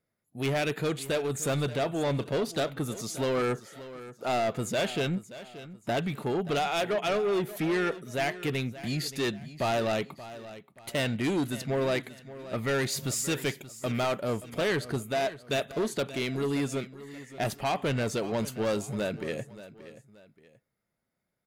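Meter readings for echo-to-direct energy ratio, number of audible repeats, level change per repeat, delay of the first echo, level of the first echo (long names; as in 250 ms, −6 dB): −15.0 dB, 2, −9.0 dB, 578 ms, −15.5 dB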